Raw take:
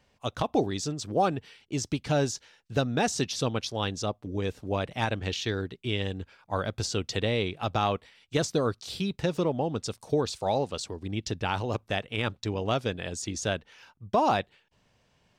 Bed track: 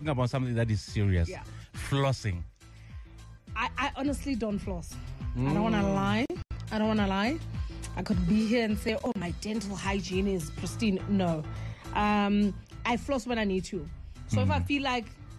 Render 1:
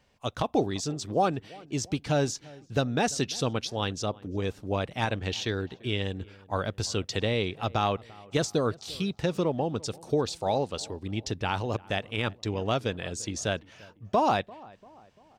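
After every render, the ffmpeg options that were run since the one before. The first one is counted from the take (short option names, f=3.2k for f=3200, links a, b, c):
-filter_complex "[0:a]asplit=2[a][b];[b]adelay=343,lowpass=f=1.7k:p=1,volume=-22dB,asplit=2[c][d];[d]adelay=343,lowpass=f=1.7k:p=1,volume=0.51,asplit=2[e][f];[f]adelay=343,lowpass=f=1.7k:p=1,volume=0.51,asplit=2[g][h];[h]adelay=343,lowpass=f=1.7k:p=1,volume=0.51[i];[a][c][e][g][i]amix=inputs=5:normalize=0"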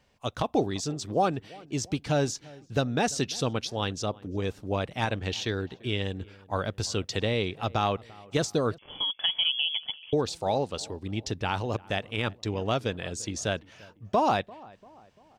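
-filter_complex "[0:a]asettb=1/sr,asplit=3[a][b][c];[a]atrim=end=8.784[d];[b]atrim=start=8.78:end=10.13,asetpts=PTS-STARTPTS,afade=t=in:d=0.004:c=qsin,afade=t=out:st=1.346:d=0.004:c=qsin,lowpass=f=3k:t=q:w=0.5098,lowpass=f=3k:t=q:w=0.6013,lowpass=f=3k:t=q:w=0.9,lowpass=f=3k:t=q:w=2.563,afreqshift=-3500[e];[c]atrim=start=10.126[f];[d][e]acrossfade=d=0.004:c1=hsin:c2=qsin[g];[g][f]acrossfade=d=0.004:c1=qsin:c2=hsin"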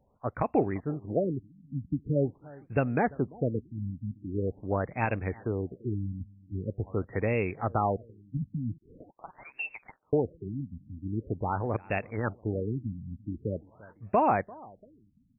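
-af "afftfilt=real='re*lt(b*sr/1024,260*pow(2800/260,0.5+0.5*sin(2*PI*0.44*pts/sr)))':imag='im*lt(b*sr/1024,260*pow(2800/260,0.5+0.5*sin(2*PI*0.44*pts/sr)))':win_size=1024:overlap=0.75"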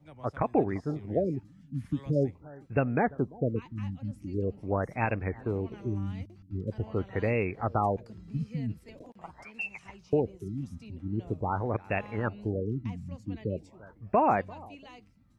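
-filter_complex "[1:a]volume=-21.5dB[a];[0:a][a]amix=inputs=2:normalize=0"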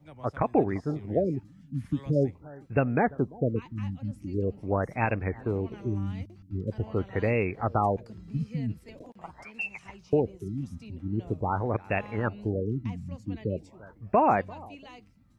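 -af "volume=2dB"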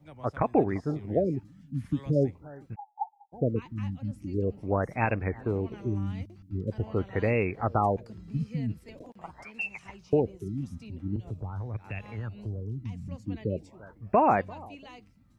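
-filter_complex "[0:a]asplit=3[a][b][c];[a]afade=t=out:st=2.74:d=0.02[d];[b]asuperpass=centerf=840:order=8:qfactor=7,afade=t=in:st=2.74:d=0.02,afade=t=out:st=3.32:d=0.02[e];[c]afade=t=in:st=3.32:d=0.02[f];[d][e][f]amix=inputs=3:normalize=0,asettb=1/sr,asplit=3[g][h][i];[g]atrim=end=11.164[j];[h]atrim=start=11.16:end=13.08,asetpts=PTS-STARTPTS,afade=t=in:d=0.004:c=qsin,afade=t=out:st=1.916:d=0.004:c=qsin,acrossover=split=140|3000[k][l][m];[l]acompressor=threshold=-41dB:ratio=10:attack=3.2:release=140:knee=2.83:detection=peak[n];[k][n][m]amix=inputs=3:normalize=0[o];[i]atrim=start=13.076[p];[j][o]acrossfade=d=0.004:c1=hsin:c2=qsin[q];[q][p]acrossfade=d=0.004:c1=qsin:c2=hsin"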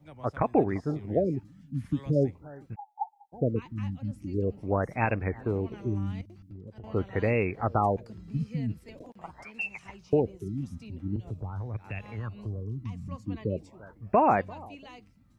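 -filter_complex "[0:a]asettb=1/sr,asplit=3[a][b][c];[a]atrim=end=6.214[d];[b]atrim=start=6.21:end=6.84,asetpts=PTS-STARTPTS,afade=t=in:d=0.004:c=qsin,afade=t=out:st=0.626:d=0.004:c=qsin,acompressor=threshold=-41dB:ratio=8:attack=3.2:release=140:knee=1:detection=peak[e];[c]atrim=start=6.836[f];[d][e]acrossfade=d=0.004:c1=hsin:c2=qsin[g];[g][f]acrossfade=d=0.004:c1=qsin:c2=hsin,asettb=1/sr,asplit=3[h][i][j];[h]atrim=end=12.204[k];[i]atrim=start=12.2:end=13.7,asetpts=PTS-STARTPTS,afade=t=in:d=0.004:c=qsin,afade=t=out:st=1.496:d=0.004:c=qsin,equalizer=f=1.1k:w=6.6:g=13.5[l];[j]atrim=start=13.696[m];[k][l]acrossfade=d=0.004:c1=hsin:c2=qsin[n];[n][m]acrossfade=d=0.004:c1=qsin:c2=hsin"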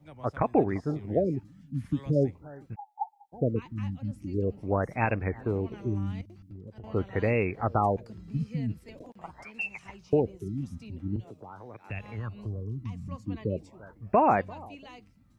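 -filter_complex "[0:a]asettb=1/sr,asplit=3[a][b][c];[a]atrim=end=11.244[d];[b]atrim=start=11.24:end=11.9,asetpts=PTS-STARTPTS,afade=t=in:d=0.004:c=qsin,afade=t=out:st=0.656:d=0.004:c=qsin,highpass=290[e];[c]atrim=start=11.896[f];[d][e]acrossfade=d=0.004:c1=hsin:c2=qsin[g];[g][f]acrossfade=d=0.004:c1=qsin:c2=hsin"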